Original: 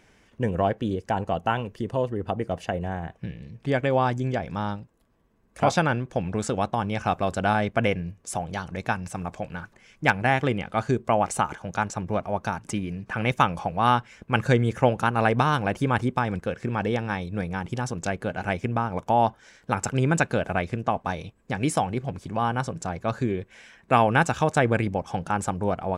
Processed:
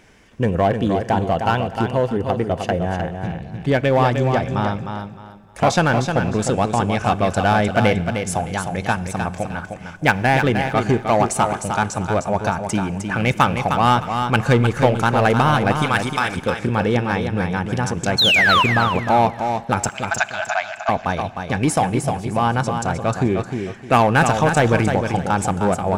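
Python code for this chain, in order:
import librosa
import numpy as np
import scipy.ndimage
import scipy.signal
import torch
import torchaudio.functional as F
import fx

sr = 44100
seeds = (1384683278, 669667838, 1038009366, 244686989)

p1 = fx.tilt_shelf(x, sr, db=-10.0, hz=1200.0, at=(15.82, 16.37))
p2 = fx.spec_paint(p1, sr, seeds[0], shape='fall', start_s=18.18, length_s=0.45, low_hz=930.0, high_hz=4400.0, level_db=-21.0)
p3 = 10.0 ** (-19.5 / 20.0) * (np.abs((p2 / 10.0 ** (-19.5 / 20.0) + 3.0) % 4.0 - 2.0) - 1.0)
p4 = p2 + F.gain(torch.from_numpy(p3), -7.5).numpy()
p5 = fx.brickwall_bandpass(p4, sr, low_hz=610.0, high_hz=7200.0, at=(19.89, 20.89))
p6 = p5 + fx.echo_feedback(p5, sr, ms=307, feedback_pct=26, wet_db=-6.5, dry=0)
p7 = fx.rev_schroeder(p6, sr, rt60_s=2.4, comb_ms=26, drr_db=19.0)
y = F.gain(torch.from_numpy(p7), 4.0).numpy()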